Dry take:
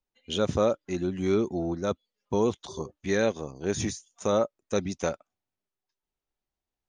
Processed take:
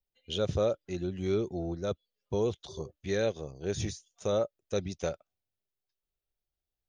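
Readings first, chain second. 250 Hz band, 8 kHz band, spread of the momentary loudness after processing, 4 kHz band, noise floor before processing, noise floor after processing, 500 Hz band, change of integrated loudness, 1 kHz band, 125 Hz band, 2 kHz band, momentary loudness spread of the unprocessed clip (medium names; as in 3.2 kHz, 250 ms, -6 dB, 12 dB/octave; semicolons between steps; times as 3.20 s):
-6.5 dB, -6.5 dB, 8 LU, -3.0 dB, under -85 dBFS, under -85 dBFS, -3.5 dB, -4.5 dB, -8.0 dB, -1.5 dB, -7.0 dB, 7 LU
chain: graphic EQ 250/1000/2000/8000 Hz -11/-11/-6/-11 dB; trim +1.5 dB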